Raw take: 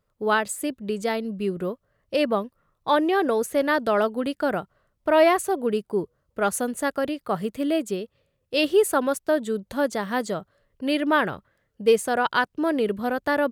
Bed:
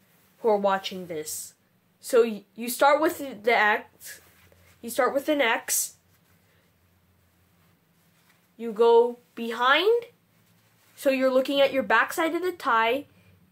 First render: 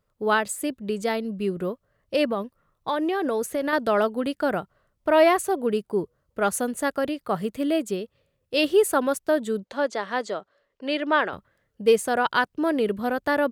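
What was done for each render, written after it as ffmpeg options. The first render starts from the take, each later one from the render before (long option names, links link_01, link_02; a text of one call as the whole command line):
ffmpeg -i in.wav -filter_complex "[0:a]asettb=1/sr,asplit=3[link_01][link_02][link_03];[link_01]atrim=end=2.254[link_04];[link_02]atrim=start=2.25:end=3.73,asetpts=PTS-STARTPTS,afade=type=in:duration=0.004:curve=qsin,afade=type=out:start_time=1.476:duration=0.004:curve=qsin,acompressor=threshold=-21dB:ratio=6:attack=3.2:release=140:knee=1:detection=peak[link_05];[link_03]atrim=start=3.726[link_06];[link_04][link_05]acrossfade=duration=0.004:curve1=hsin:curve2=qsin[link_07];[link_07][link_06]acrossfade=duration=0.004:curve1=qsin:curve2=hsin,asettb=1/sr,asplit=3[link_08][link_09][link_10];[link_08]atrim=end=9.644[link_11];[link_09]atrim=start=9.64:end=11.33,asetpts=PTS-STARTPTS,afade=type=in:duration=0.004:curve=qsin,afade=type=out:start_time=1.686:duration=0.004:curve=qsin,acrossover=split=290 7200:gain=0.112 1 0.0631[link_12][link_13][link_14];[link_12][link_13][link_14]amix=inputs=3:normalize=0[link_15];[link_10]atrim=start=11.326[link_16];[link_11][link_15]acrossfade=duration=0.004:curve1=hsin:curve2=qsin[link_17];[link_17][link_16]acrossfade=duration=0.004:curve1=qsin:curve2=hsin" out.wav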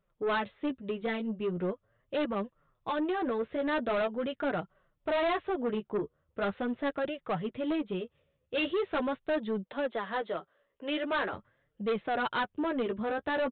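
ffmpeg -i in.wav -af "flanger=delay=5:depth=9.6:regen=11:speed=0.42:shape=triangular,aresample=8000,asoftclip=type=tanh:threshold=-25.5dB,aresample=44100" out.wav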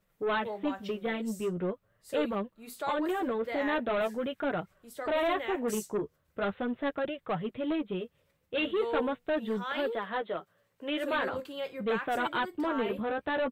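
ffmpeg -i in.wav -i bed.wav -filter_complex "[1:a]volume=-16dB[link_01];[0:a][link_01]amix=inputs=2:normalize=0" out.wav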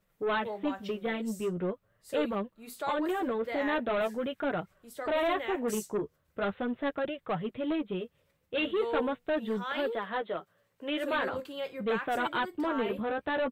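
ffmpeg -i in.wav -af anull out.wav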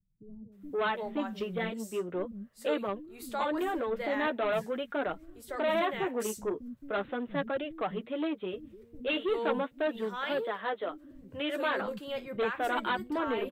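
ffmpeg -i in.wav -filter_complex "[0:a]acrossover=split=210[link_01][link_02];[link_02]adelay=520[link_03];[link_01][link_03]amix=inputs=2:normalize=0" out.wav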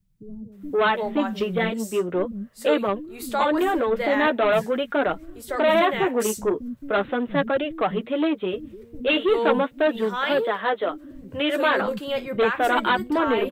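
ffmpeg -i in.wav -af "volume=10dB" out.wav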